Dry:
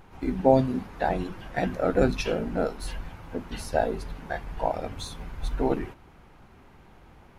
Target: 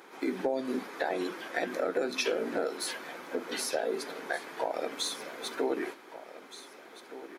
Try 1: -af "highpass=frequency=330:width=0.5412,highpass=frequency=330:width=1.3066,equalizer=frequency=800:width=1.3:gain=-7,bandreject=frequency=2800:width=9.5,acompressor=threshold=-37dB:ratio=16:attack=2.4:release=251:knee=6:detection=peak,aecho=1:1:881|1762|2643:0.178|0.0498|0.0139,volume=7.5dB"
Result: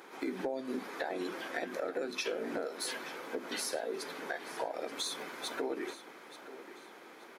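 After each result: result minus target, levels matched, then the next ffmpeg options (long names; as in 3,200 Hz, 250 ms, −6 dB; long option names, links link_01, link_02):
echo 640 ms early; downward compressor: peak gain reduction +6 dB
-af "highpass=frequency=330:width=0.5412,highpass=frequency=330:width=1.3066,equalizer=frequency=800:width=1.3:gain=-7,bandreject=frequency=2800:width=9.5,acompressor=threshold=-37dB:ratio=16:attack=2.4:release=251:knee=6:detection=peak,aecho=1:1:1521|3042|4563:0.178|0.0498|0.0139,volume=7.5dB"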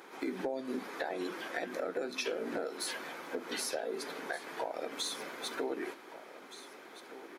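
downward compressor: peak gain reduction +6 dB
-af "highpass=frequency=330:width=0.5412,highpass=frequency=330:width=1.3066,equalizer=frequency=800:width=1.3:gain=-7,bandreject=frequency=2800:width=9.5,acompressor=threshold=-30.5dB:ratio=16:attack=2.4:release=251:knee=6:detection=peak,aecho=1:1:1521|3042|4563:0.178|0.0498|0.0139,volume=7.5dB"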